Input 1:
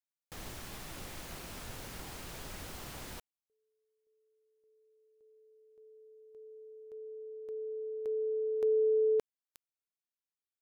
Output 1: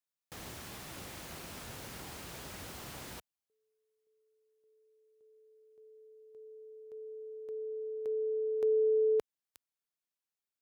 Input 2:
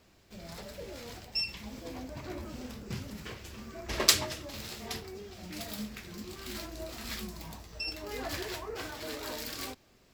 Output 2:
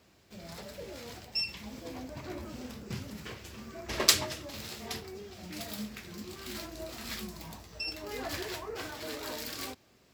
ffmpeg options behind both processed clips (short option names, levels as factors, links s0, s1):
-af "highpass=65"